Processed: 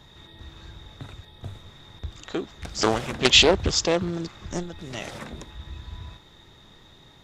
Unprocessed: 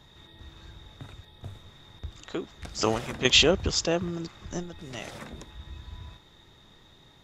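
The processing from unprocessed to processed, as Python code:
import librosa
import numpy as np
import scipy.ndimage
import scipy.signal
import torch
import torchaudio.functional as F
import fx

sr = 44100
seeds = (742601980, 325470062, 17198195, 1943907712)

y = fx.doppler_dist(x, sr, depth_ms=0.44)
y = y * 10.0 ** (4.0 / 20.0)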